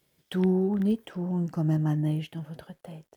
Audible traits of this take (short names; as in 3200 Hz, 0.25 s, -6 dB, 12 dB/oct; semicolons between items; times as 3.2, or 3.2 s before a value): a quantiser's noise floor 12-bit, dither none; Opus